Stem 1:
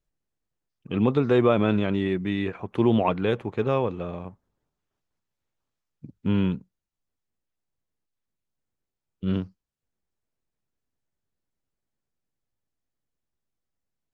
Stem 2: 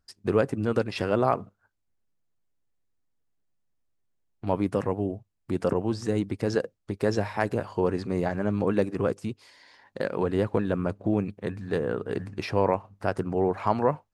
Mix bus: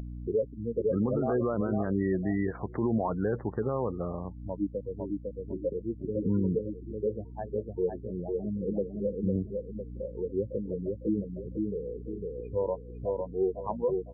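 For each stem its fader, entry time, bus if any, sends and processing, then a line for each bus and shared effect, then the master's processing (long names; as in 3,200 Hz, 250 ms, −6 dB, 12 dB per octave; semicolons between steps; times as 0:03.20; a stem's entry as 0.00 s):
−1.5 dB, 0.00 s, no send, no echo send, Butterworth low-pass 2,000 Hz 72 dB per octave; brickwall limiter −16.5 dBFS, peak gain reduction 9 dB; mains hum 60 Hz, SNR 13 dB
−3.0 dB, 0.00 s, no send, echo send −3.5 dB, every bin expanded away from the loudest bin 2.5 to 1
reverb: not used
echo: repeating echo 504 ms, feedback 29%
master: upward compression, threshold −31 dBFS; gate on every frequency bin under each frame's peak −25 dB strong; brickwall limiter −19.5 dBFS, peak gain reduction 7 dB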